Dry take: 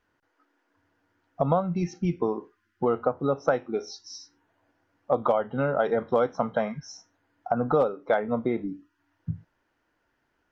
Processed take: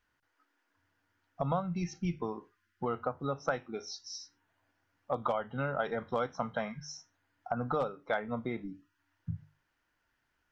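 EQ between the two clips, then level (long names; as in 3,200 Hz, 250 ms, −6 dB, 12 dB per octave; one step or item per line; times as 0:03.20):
parametric band 410 Hz −10.5 dB 2.5 octaves
mains-hum notches 50/100/150 Hz
−1.0 dB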